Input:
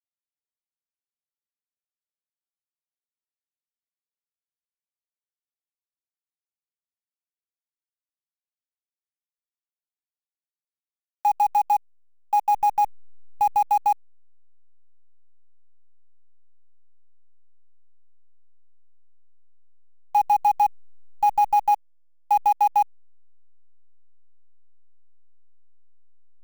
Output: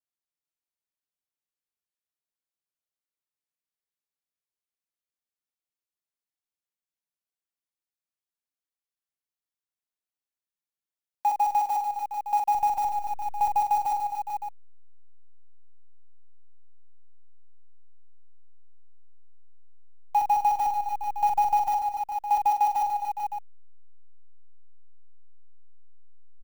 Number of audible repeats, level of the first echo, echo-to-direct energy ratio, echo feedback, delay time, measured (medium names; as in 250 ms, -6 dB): 6, -6.0 dB, -2.0 dB, no regular repeats, 43 ms